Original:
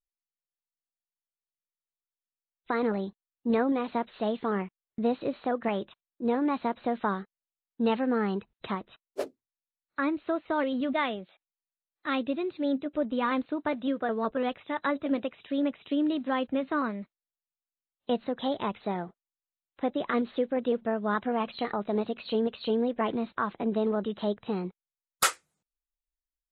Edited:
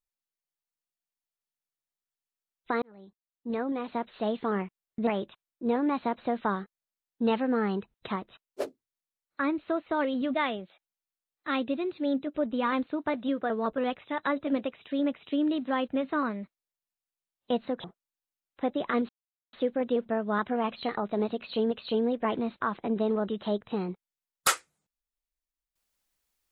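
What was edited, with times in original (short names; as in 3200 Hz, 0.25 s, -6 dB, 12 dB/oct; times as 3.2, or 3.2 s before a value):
2.82–4.32 fade in
5.07–5.66 cut
18.43–19.04 cut
20.29 insert silence 0.44 s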